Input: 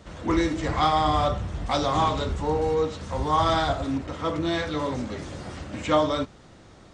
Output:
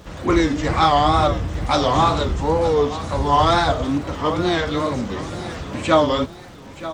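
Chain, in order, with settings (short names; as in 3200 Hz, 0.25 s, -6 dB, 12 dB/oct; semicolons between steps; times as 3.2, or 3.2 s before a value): crackle 420/s -50 dBFS; feedback echo 0.92 s, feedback 37%, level -14.5 dB; wow and flutter 130 cents; gain +6 dB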